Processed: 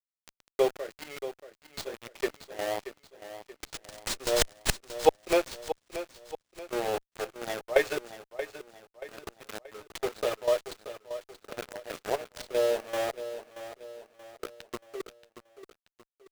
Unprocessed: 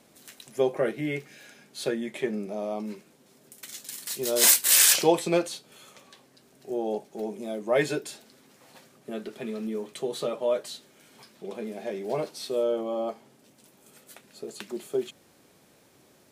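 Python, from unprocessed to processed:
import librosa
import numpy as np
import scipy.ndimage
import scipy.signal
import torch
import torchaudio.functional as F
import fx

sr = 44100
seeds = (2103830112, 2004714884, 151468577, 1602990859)

p1 = scipy.signal.sosfilt(scipy.signal.butter(4, 380.0, 'highpass', fs=sr, output='sos'), x)
p2 = fx.level_steps(p1, sr, step_db=21)
p3 = p1 + (p2 * librosa.db_to_amplitude(-2.0))
p4 = fx.gate_flip(p3, sr, shuts_db=-7.0, range_db=-27)
p5 = np.where(np.abs(p4) >= 10.0 ** (-29.5 / 20.0), p4, 0.0)
p6 = fx.transient(p5, sr, attack_db=1, sustain_db=-7)
p7 = fx.step_gate(p6, sr, bpm=116, pattern='.xx.xx.x', floor_db=-12.0, edge_ms=4.5)
p8 = p7 + fx.echo_feedback(p7, sr, ms=630, feedback_pct=43, wet_db=-12, dry=0)
y = fx.running_max(p8, sr, window=3)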